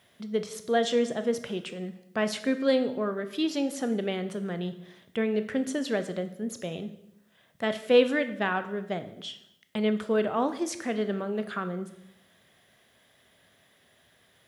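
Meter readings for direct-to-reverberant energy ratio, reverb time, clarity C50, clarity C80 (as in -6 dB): 9.5 dB, 0.75 s, 12.5 dB, 15.5 dB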